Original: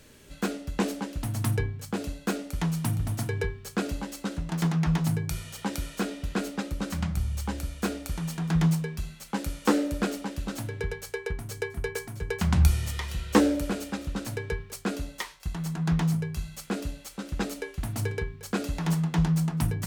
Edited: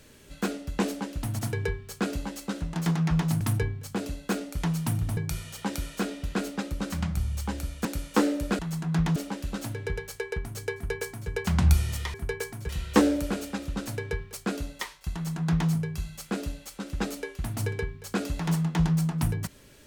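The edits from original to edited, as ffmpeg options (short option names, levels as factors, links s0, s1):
-filter_complex "[0:a]asplit=9[s0][s1][s2][s3][s4][s5][s6][s7][s8];[s0]atrim=end=1.392[s9];[s1]atrim=start=3.148:end=5.172[s10];[s2]atrim=start=1.388:end=3.152[s11];[s3]atrim=start=5.168:end=7.852[s12];[s4]atrim=start=9.358:end=10.102[s13];[s5]atrim=start=15.518:end=16.092[s14];[s6]atrim=start=10.098:end=13.082[s15];[s7]atrim=start=11.688:end=12.242[s16];[s8]atrim=start=13.078[s17];[s9][s10]acrossfade=d=0.004:c1=hsin:c2=hsin[s18];[s18][s11]acrossfade=d=0.004:c1=hsin:c2=hsin[s19];[s19][s12]acrossfade=d=0.004:c1=hsin:c2=hsin[s20];[s20][s13]acrossfade=d=0.004:c1=hsin:c2=hsin[s21];[s21][s14]acrossfade=d=0.004:c1=hsin:c2=hsin[s22];[s22][s15]acrossfade=d=0.004:c1=hsin:c2=hsin[s23];[s23][s16]acrossfade=d=0.004:c1=hsin:c2=hsin[s24];[s24][s17]acrossfade=d=0.004:c1=hsin:c2=hsin"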